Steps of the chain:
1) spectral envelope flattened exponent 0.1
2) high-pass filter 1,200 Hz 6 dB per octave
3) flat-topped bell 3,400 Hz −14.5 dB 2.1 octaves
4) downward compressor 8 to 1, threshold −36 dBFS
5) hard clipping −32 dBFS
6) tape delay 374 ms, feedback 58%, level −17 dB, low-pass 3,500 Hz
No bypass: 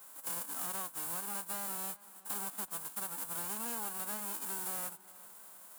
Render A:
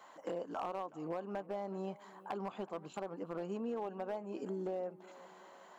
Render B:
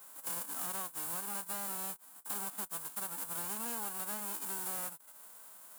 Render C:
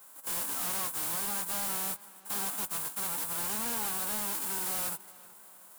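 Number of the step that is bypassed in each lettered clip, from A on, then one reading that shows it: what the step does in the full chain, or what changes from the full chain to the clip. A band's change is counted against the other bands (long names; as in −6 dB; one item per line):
1, 8 kHz band −31.5 dB
6, echo-to-direct ratio −42.5 dB to none audible
4, average gain reduction 10.5 dB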